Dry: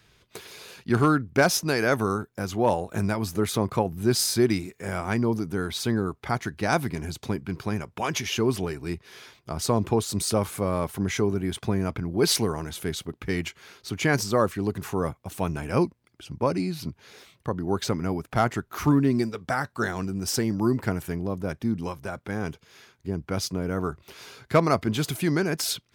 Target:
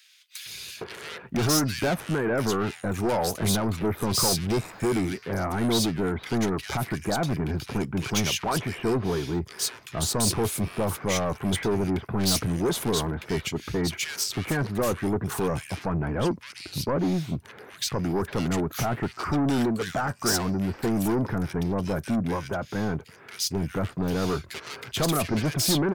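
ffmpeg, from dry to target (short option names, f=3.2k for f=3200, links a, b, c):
-filter_complex "[0:a]highpass=63,alimiter=limit=-14.5dB:level=0:latency=1:release=55,asoftclip=type=tanh:threshold=-28.5dB,acrossover=split=1900[a][b];[a]adelay=460[c];[c][b]amix=inputs=2:normalize=0,volume=7.5dB"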